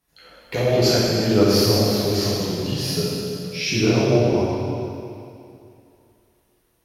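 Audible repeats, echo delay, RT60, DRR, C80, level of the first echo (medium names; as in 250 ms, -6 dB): no echo, no echo, 2.7 s, -9.5 dB, -1.5 dB, no echo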